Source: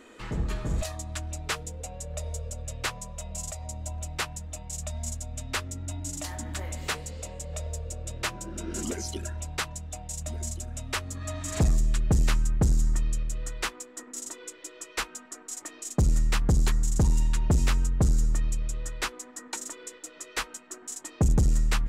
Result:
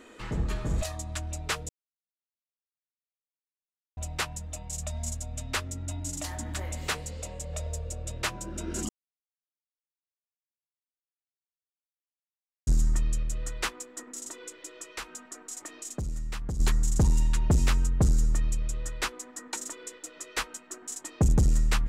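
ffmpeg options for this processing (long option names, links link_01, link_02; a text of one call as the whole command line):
ffmpeg -i in.wav -filter_complex "[0:a]asettb=1/sr,asplit=3[link_01][link_02][link_03];[link_01]atrim=end=14.034[link_04];[link_02]atrim=start=14.03:end=16.6,asetpts=PTS-STARTPTS,afade=type=in:duration=0.004:curve=qsin,afade=type=out:start_time=2.566:duration=0.004:curve=qsin,acompressor=threshold=-36dB:ratio=2.5:attack=3.2:release=140:knee=1:detection=peak[link_05];[link_03]atrim=start=16.596[link_06];[link_04][link_05]acrossfade=duration=0.004:curve1=hsin:curve2=qsin[link_07];[link_07][link_06]acrossfade=duration=0.004:curve1=qsin:curve2=hsin,asplit=5[link_08][link_09][link_10][link_11][link_12];[link_08]atrim=end=1.69,asetpts=PTS-STARTPTS,afade=type=out:start_time=1.686:duration=0.004:curve=hsin[link_13];[link_09]atrim=start=1.69:end=3.97,asetpts=PTS-STARTPTS,volume=0[link_14];[link_10]atrim=start=3.97:end=8.89,asetpts=PTS-STARTPTS,afade=type=in:duration=0.004:curve=hsin,afade=type=out:start_time=4.916:duration=0.004:curve=hsin[link_15];[link_11]atrim=start=8.89:end=12.67,asetpts=PTS-STARTPTS,volume=0[link_16];[link_12]atrim=start=12.67,asetpts=PTS-STARTPTS,afade=type=in:duration=0.004:curve=hsin[link_17];[link_13][link_14][link_15][link_16][link_17]concat=n=5:v=0:a=1" out.wav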